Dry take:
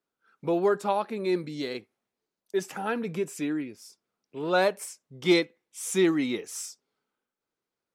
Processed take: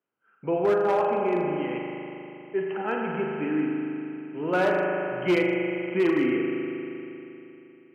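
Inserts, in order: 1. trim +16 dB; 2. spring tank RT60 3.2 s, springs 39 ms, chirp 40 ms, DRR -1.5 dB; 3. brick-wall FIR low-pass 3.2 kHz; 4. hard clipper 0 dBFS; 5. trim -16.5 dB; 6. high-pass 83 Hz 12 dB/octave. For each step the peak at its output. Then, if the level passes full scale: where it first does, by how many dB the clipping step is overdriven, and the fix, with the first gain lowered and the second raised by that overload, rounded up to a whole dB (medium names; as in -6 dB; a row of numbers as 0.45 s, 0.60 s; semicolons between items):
+4.5 dBFS, +8.0 dBFS, +8.0 dBFS, 0.0 dBFS, -16.5 dBFS, -14.0 dBFS; step 1, 8.0 dB; step 1 +8 dB, step 5 -8.5 dB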